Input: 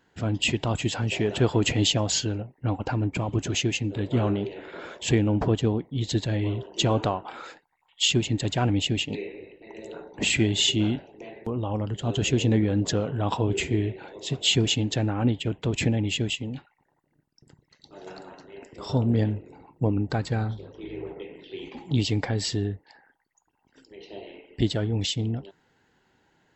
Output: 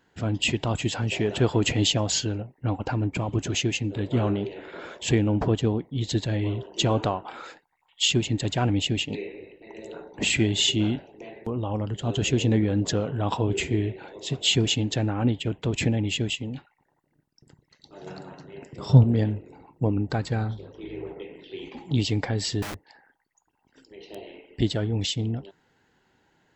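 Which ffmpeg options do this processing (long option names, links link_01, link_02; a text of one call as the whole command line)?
ffmpeg -i in.wav -filter_complex "[0:a]asettb=1/sr,asplit=3[link_01][link_02][link_03];[link_01]atrim=end=18.004[link_04];[link_02]atrim=start=18:end=19.04,asetpts=PTS-STARTPTS,afade=type=in:duration=0.004:curve=qsin,afade=type=out:start_time=1.036:duration=0.004:curve=qsin,equalizer=frequency=140:width=1.5:gain=13.5[link_05];[link_03]atrim=start=19.036[link_06];[link_04][link_05]acrossfade=duration=0.004:curve1=hsin:curve2=qsin[link_07];[link_07][link_06]acrossfade=duration=0.004:curve1=qsin:curve2=hsin,asettb=1/sr,asplit=3[link_08][link_09][link_10];[link_08]atrim=end=22.624[link_11];[link_09]atrim=start=22.62:end=24.15,asetpts=PTS-STARTPTS,afade=type=in:duration=0.004:curve=qsin,afade=type=out:start_time=1.526:duration=0.004:curve=qsin,aeval=exprs='(mod(33.5*val(0)+1,2)-1)/33.5':channel_layout=same[link_12];[link_10]atrim=start=24.146[link_13];[link_11][link_12]acrossfade=duration=0.004:curve1=hsin:curve2=qsin[link_14];[link_14][link_13]acrossfade=duration=0.004:curve1=qsin:curve2=hsin" out.wav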